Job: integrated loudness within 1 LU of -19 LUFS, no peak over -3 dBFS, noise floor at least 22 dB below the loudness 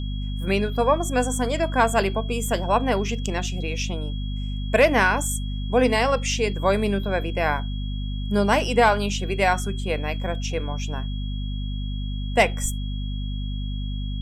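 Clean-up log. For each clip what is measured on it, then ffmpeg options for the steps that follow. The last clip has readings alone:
hum 50 Hz; harmonics up to 250 Hz; hum level -25 dBFS; steady tone 3300 Hz; tone level -41 dBFS; loudness -24.0 LUFS; peak -6.0 dBFS; loudness target -19.0 LUFS
-> -af "bandreject=f=50:t=h:w=4,bandreject=f=100:t=h:w=4,bandreject=f=150:t=h:w=4,bandreject=f=200:t=h:w=4,bandreject=f=250:t=h:w=4"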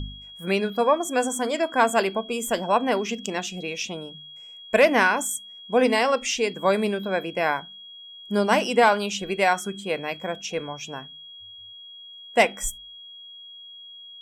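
hum none; steady tone 3300 Hz; tone level -41 dBFS
-> -af "bandreject=f=3.3k:w=30"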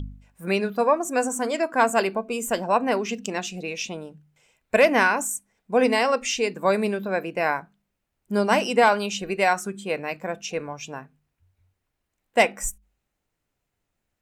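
steady tone none; loudness -23.5 LUFS; peak -6.5 dBFS; loudness target -19.0 LUFS
-> -af "volume=4.5dB,alimiter=limit=-3dB:level=0:latency=1"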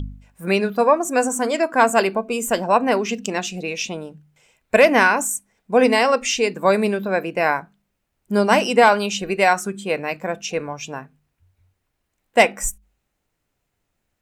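loudness -19.5 LUFS; peak -3.0 dBFS; noise floor -75 dBFS

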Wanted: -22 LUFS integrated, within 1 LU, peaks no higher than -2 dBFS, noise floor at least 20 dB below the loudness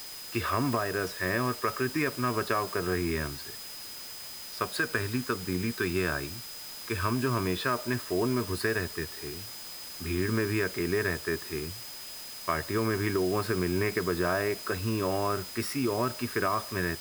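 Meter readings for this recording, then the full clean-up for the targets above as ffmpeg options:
steady tone 5000 Hz; tone level -44 dBFS; noise floor -42 dBFS; noise floor target -51 dBFS; loudness -30.5 LUFS; peak -12.5 dBFS; loudness target -22.0 LUFS
-> -af "bandreject=f=5k:w=30"
-af "afftdn=nr=9:nf=-42"
-af "volume=8.5dB"

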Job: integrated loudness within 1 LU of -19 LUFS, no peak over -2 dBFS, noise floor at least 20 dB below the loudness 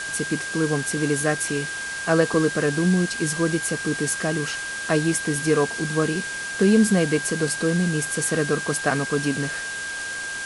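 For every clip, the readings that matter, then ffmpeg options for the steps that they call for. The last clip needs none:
steady tone 1600 Hz; tone level -29 dBFS; noise floor -31 dBFS; noise floor target -43 dBFS; loudness -23.0 LUFS; peak -6.0 dBFS; loudness target -19.0 LUFS
-> -af "bandreject=f=1.6k:w=30"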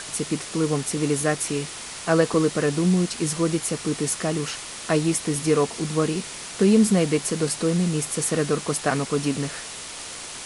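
steady tone none; noise floor -37 dBFS; noise floor target -44 dBFS
-> -af "afftdn=nr=7:nf=-37"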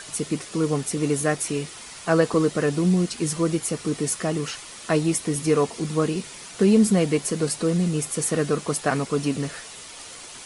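noise floor -41 dBFS; noise floor target -44 dBFS
-> -af "afftdn=nr=6:nf=-41"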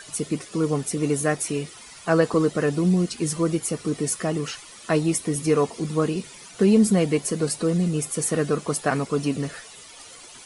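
noise floor -45 dBFS; loudness -23.5 LUFS; peak -7.0 dBFS; loudness target -19.0 LUFS
-> -af "volume=4.5dB"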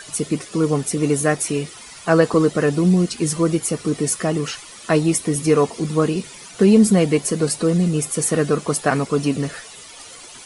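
loudness -19.0 LUFS; peak -2.5 dBFS; noise floor -40 dBFS

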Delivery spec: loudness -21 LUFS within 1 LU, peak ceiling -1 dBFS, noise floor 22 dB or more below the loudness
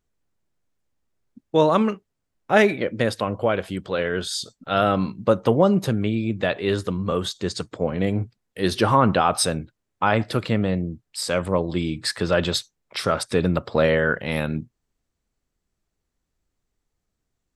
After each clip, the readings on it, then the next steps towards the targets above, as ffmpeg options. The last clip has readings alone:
loudness -22.5 LUFS; peak -3.5 dBFS; loudness target -21.0 LUFS
-> -af "volume=1.5dB"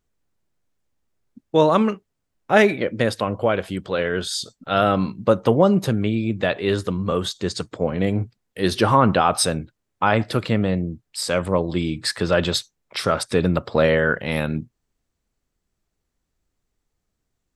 loudness -21.0 LUFS; peak -2.0 dBFS; noise floor -78 dBFS

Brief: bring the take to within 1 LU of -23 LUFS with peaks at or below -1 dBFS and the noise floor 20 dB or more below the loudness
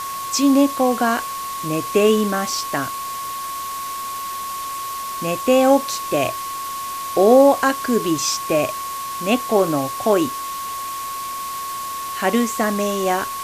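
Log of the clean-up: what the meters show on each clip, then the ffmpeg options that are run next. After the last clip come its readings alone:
steady tone 1100 Hz; tone level -26 dBFS; noise floor -28 dBFS; noise floor target -40 dBFS; loudness -20.0 LUFS; peak -1.5 dBFS; loudness target -23.0 LUFS
-> -af "bandreject=f=1.1k:w=30"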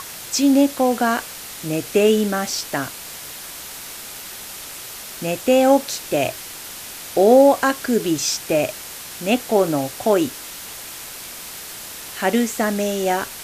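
steady tone none; noise floor -35 dBFS; noise floor target -39 dBFS
-> -af "afftdn=nr=6:nf=-35"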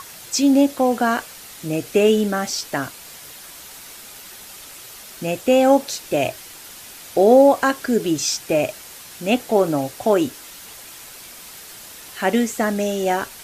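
noise floor -40 dBFS; loudness -19.5 LUFS; peak -2.0 dBFS; loudness target -23.0 LUFS
-> -af "volume=-3.5dB"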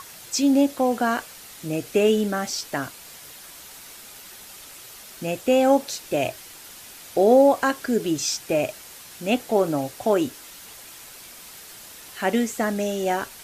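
loudness -23.0 LUFS; peak -5.5 dBFS; noise floor -44 dBFS

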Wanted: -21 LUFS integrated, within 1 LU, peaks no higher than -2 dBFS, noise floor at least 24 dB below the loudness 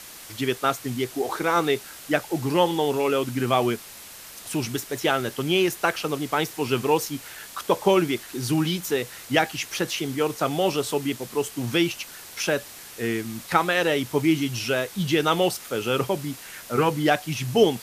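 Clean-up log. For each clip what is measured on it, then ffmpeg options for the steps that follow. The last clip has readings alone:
noise floor -43 dBFS; noise floor target -49 dBFS; loudness -24.5 LUFS; peak -3.5 dBFS; loudness target -21.0 LUFS
-> -af "afftdn=nr=6:nf=-43"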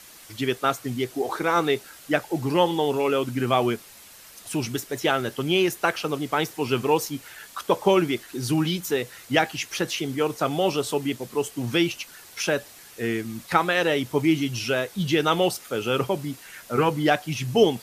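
noise floor -47 dBFS; noise floor target -49 dBFS
-> -af "afftdn=nr=6:nf=-47"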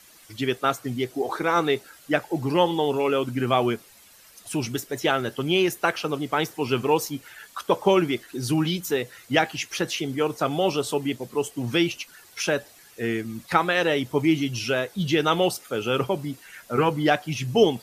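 noise floor -52 dBFS; loudness -24.5 LUFS; peak -4.0 dBFS; loudness target -21.0 LUFS
-> -af "volume=3.5dB,alimiter=limit=-2dB:level=0:latency=1"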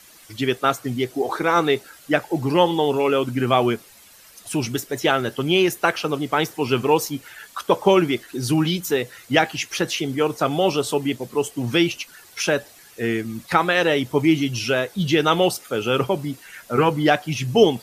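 loudness -21.5 LUFS; peak -2.0 dBFS; noise floor -48 dBFS

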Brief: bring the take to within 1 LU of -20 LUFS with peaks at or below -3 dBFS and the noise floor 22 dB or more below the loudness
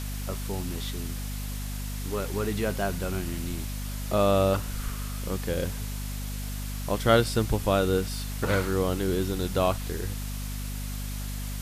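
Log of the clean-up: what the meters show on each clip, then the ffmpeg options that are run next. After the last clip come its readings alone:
hum 50 Hz; harmonics up to 250 Hz; hum level -31 dBFS; noise floor -34 dBFS; noise floor target -51 dBFS; loudness -29.0 LUFS; peak -7.0 dBFS; loudness target -20.0 LUFS
-> -af "bandreject=f=50:t=h:w=6,bandreject=f=100:t=h:w=6,bandreject=f=150:t=h:w=6,bandreject=f=200:t=h:w=6,bandreject=f=250:t=h:w=6"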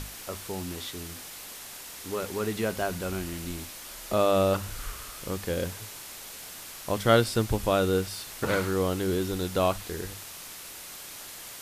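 hum none; noise floor -43 dBFS; noise floor target -52 dBFS
-> -af "afftdn=nr=9:nf=-43"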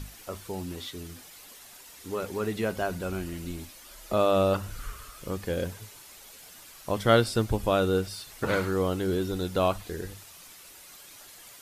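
noise floor -50 dBFS; noise floor target -51 dBFS
-> -af "afftdn=nr=6:nf=-50"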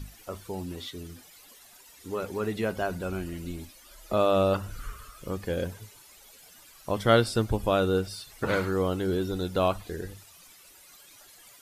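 noise floor -54 dBFS; loudness -28.5 LUFS; peak -7.5 dBFS; loudness target -20.0 LUFS
-> -af "volume=8.5dB,alimiter=limit=-3dB:level=0:latency=1"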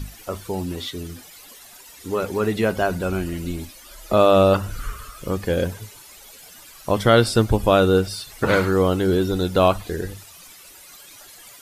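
loudness -20.5 LUFS; peak -3.0 dBFS; noise floor -45 dBFS

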